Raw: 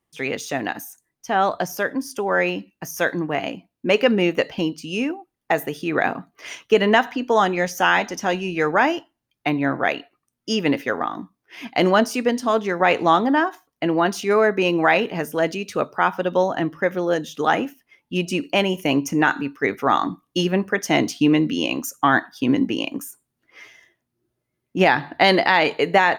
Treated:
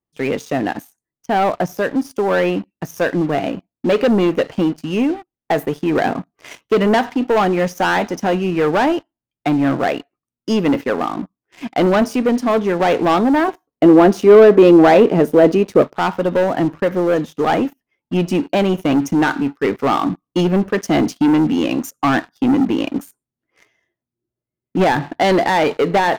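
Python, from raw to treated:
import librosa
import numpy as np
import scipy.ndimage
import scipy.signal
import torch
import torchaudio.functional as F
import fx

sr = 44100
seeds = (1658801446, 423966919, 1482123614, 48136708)

y = fx.tilt_shelf(x, sr, db=5.5, hz=1200.0)
y = fx.leveller(y, sr, passes=3)
y = fx.peak_eq(y, sr, hz=400.0, db=8.0, octaves=1.9, at=(13.48, 15.82))
y = y * librosa.db_to_amplitude(-7.5)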